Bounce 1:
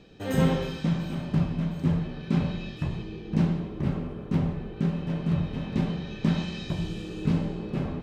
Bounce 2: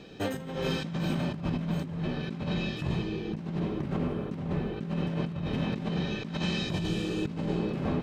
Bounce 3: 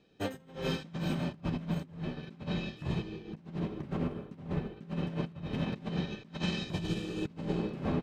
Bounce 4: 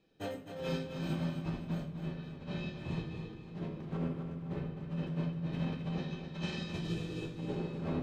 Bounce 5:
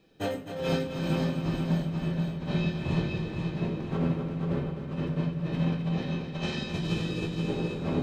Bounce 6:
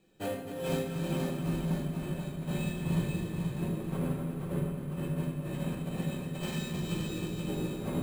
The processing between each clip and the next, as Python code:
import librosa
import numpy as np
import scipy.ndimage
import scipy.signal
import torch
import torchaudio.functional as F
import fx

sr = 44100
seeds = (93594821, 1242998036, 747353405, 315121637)

y1 = fx.low_shelf(x, sr, hz=79.0, db=-11.5)
y1 = fx.over_compress(y1, sr, threshold_db=-34.0, ratio=-1.0)
y1 = y1 * 10.0 ** (2.5 / 20.0)
y2 = fx.upward_expand(y1, sr, threshold_db=-39.0, expansion=2.5)
y3 = fx.echo_feedback(y2, sr, ms=259, feedback_pct=38, wet_db=-8.0)
y3 = fx.room_shoebox(y3, sr, seeds[0], volume_m3=76.0, walls='mixed', distance_m=0.63)
y3 = y3 * 10.0 ** (-7.0 / 20.0)
y4 = fx.rider(y3, sr, range_db=10, speed_s=2.0)
y4 = fx.echo_feedback(y4, sr, ms=480, feedback_pct=38, wet_db=-5.0)
y4 = y4 * 10.0 ** (6.5 / 20.0)
y5 = fx.room_shoebox(y4, sr, seeds[1], volume_m3=740.0, walls='mixed', distance_m=0.96)
y5 = np.repeat(y5[::4], 4)[:len(y5)]
y5 = y5 * 10.0 ** (-5.5 / 20.0)